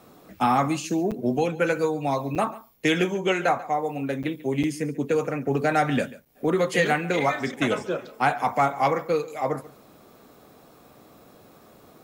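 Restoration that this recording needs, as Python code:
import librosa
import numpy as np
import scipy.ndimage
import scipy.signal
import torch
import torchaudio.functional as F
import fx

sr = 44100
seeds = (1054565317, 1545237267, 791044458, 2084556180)

y = fx.fix_interpolate(x, sr, at_s=(1.11, 2.35, 4.23, 4.63, 6.25), length_ms=7.1)
y = fx.fix_echo_inverse(y, sr, delay_ms=140, level_db=-19.0)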